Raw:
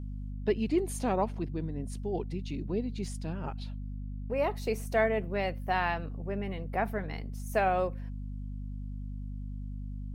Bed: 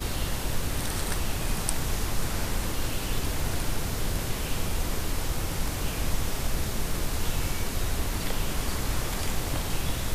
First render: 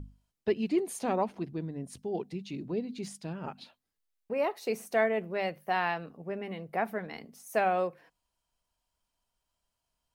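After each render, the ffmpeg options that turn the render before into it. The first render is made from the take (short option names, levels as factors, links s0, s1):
-af "bandreject=f=50:t=h:w=6,bandreject=f=100:t=h:w=6,bandreject=f=150:t=h:w=6,bandreject=f=200:t=h:w=6,bandreject=f=250:t=h:w=6"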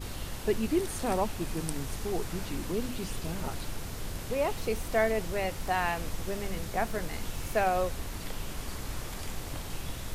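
-filter_complex "[1:a]volume=0.376[s0];[0:a][s0]amix=inputs=2:normalize=0"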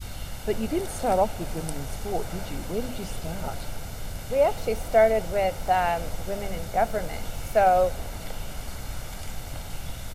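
-af "adynamicequalizer=threshold=0.00794:dfrequency=530:dqfactor=0.89:tfrequency=530:tqfactor=0.89:attack=5:release=100:ratio=0.375:range=4:mode=boostabove:tftype=bell,aecho=1:1:1.4:0.46"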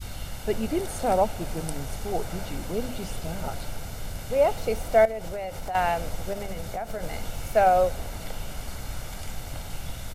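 -filter_complex "[0:a]asettb=1/sr,asplit=3[s0][s1][s2];[s0]atrim=end=5.054[s3];[s1]atrim=start=5.05:end=5.75,asetpts=PTS-STARTPTS,afade=t=in:d=0.004:c=qsin,afade=t=out:st=0.696:d=0.004:c=qsin,acompressor=threshold=0.0355:ratio=6:attack=3.2:release=140:knee=1:detection=peak[s4];[s2]atrim=start=5.746[s5];[s3][s4]acrossfade=d=0.004:c1=hsin:c2=qsin[s6];[s6][s5]acrossfade=d=0.004:c1=qsin:c2=hsin,asettb=1/sr,asplit=3[s7][s8][s9];[s7]atrim=end=6.334[s10];[s8]atrim=start=6.33:end=7.03,asetpts=PTS-STARTPTS,afade=t=in:d=0.004:c=qsin,afade=t=out:st=0.696:d=0.004:c=qsin,acompressor=threshold=0.0447:ratio=12:attack=3.2:release=140:knee=1:detection=peak[s11];[s9]atrim=start=7.026[s12];[s10][s11]acrossfade=d=0.004:c1=hsin:c2=qsin[s13];[s13][s12]acrossfade=d=0.004:c1=qsin:c2=hsin"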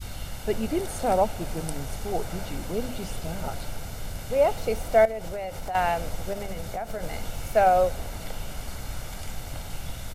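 -af anull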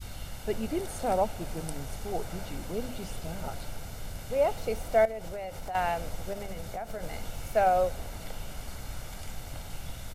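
-af "volume=0.596"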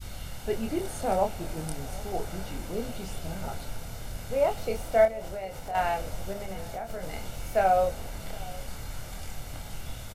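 -filter_complex "[0:a]asplit=2[s0][s1];[s1]adelay=26,volume=0.562[s2];[s0][s2]amix=inputs=2:normalize=0,aecho=1:1:766:0.0841"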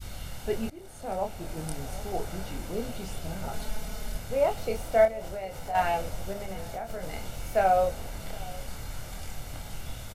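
-filter_complex "[0:a]asettb=1/sr,asplit=3[s0][s1][s2];[s0]atrim=end=3.534[s3];[s1]atrim=start=3.53:end=4.18,asetpts=PTS-STARTPTS,afade=t=in:d=0.004:c=qsin,afade=t=out:st=0.646:d=0.004:c=qsin,aecho=1:1:4.7:0.9,atrim=end_sample=28665[s4];[s2]atrim=start=4.176[s5];[s3][s4]acrossfade=d=0.004:c1=hsin:c2=qsin[s6];[s6][s5]acrossfade=d=0.004:c1=qsin:c2=hsin,asettb=1/sr,asplit=3[s7][s8][s9];[s7]atrim=end=5.594[s10];[s8]atrim=start=5.59:end=6.09,asetpts=PTS-STARTPTS,afade=t=in:d=0.004:c=qsin,afade=t=out:st=0.496:d=0.004:c=qsin,asplit=2[s11][s12];[s12]adelay=12,volume=0.501[s13];[s11][s13]amix=inputs=2:normalize=0,atrim=end_sample=22050[s14];[s9]atrim=start=6.086[s15];[s10][s14]acrossfade=d=0.004:c1=hsin:c2=qsin[s16];[s16][s15]acrossfade=d=0.004:c1=qsin:c2=hsin,asplit=2[s17][s18];[s17]atrim=end=0.7,asetpts=PTS-STARTPTS,afade=t=out:st=0.696:d=0.004:c=hsin:silence=0.1[s19];[s18]atrim=start=0.7,asetpts=PTS-STARTPTS,afade=t=in:d=1.03:silence=0.1[s20];[s19][s20]concat=n=2:v=0:a=1"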